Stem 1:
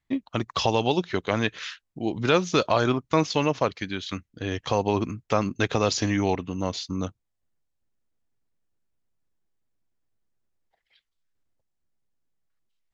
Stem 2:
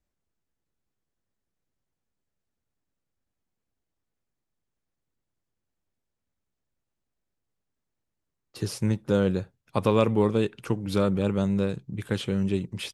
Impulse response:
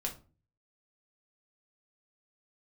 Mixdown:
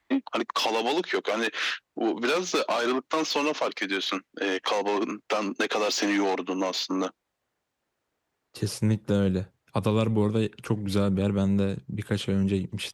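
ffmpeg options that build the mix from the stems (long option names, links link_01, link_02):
-filter_complex "[0:a]asplit=2[link_01][link_02];[link_02]highpass=frequency=720:poles=1,volume=25dB,asoftclip=type=tanh:threshold=-6.5dB[link_03];[link_01][link_03]amix=inputs=2:normalize=0,lowpass=frequency=1500:poles=1,volume=-6dB,highpass=frequency=260:width=0.5412,highpass=frequency=260:width=1.3066,volume=-2dB[link_04];[1:a]volume=1.5dB[link_05];[link_04][link_05]amix=inputs=2:normalize=0,highpass=41,acrossover=split=250|3000[link_06][link_07][link_08];[link_07]acompressor=threshold=-27dB:ratio=3[link_09];[link_06][link_09][link_08]amix=inputs=3:normalize=0"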